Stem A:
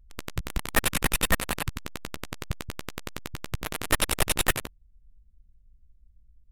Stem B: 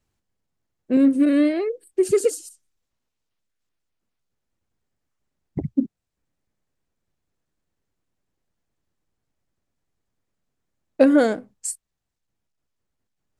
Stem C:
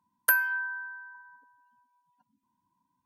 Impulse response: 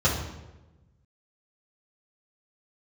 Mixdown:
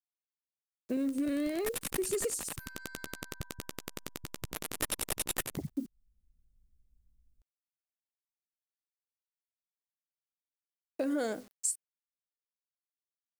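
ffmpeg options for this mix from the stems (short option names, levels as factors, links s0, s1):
-filter_complex "[0:a]equalizer=f=260:t=o:w=2.6:g=5.5,adelay=900,volume=0.398[s0];[1:a]alimiter=limit=0.2:level=0:latency=1:release=118,acrusher=bits=8:mix=0:aa=0.000001,volume=0.596,asplit=2[s1][s2];[2:a]acompressor=threshold=0.0251:ratio=10,asoftclip=type=tanh:threshold=0.0133,adelay=2300,volume=0.282[s3];[s2]apad=whole_len=327141[s4];[s0][s4]sidechaincompress=threshold=0.0316:ratio=5:attack=8.3:release=880[s5];[s5][s1]amix=inputs=2:normalize=0,bass=f=250:g=-4,treble=f=4000:g=8,acompressor=threshold=0.02:ratio=2,volume=1[s6];[s3][s6]amix=inputs=2:normalize=0"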